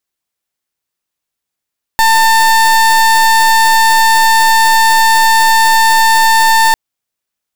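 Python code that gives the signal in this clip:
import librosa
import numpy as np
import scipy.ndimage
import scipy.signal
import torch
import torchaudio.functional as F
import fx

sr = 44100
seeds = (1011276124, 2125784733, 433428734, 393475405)

y = fx.pulse(sr, length_s=4.75, hz=896.0, level_db=-8.0, duty_pct=30)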